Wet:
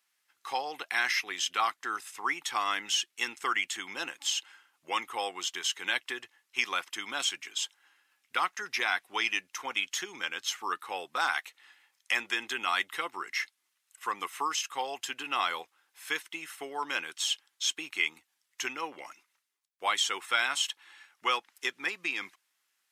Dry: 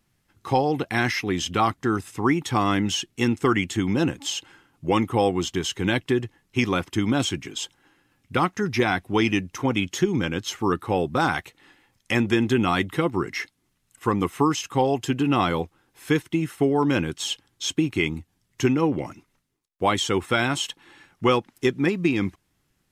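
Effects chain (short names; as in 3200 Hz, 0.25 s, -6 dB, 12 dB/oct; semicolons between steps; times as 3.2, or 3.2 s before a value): HPF 1200 Hz 12 dB/oct; gain -1.5 dB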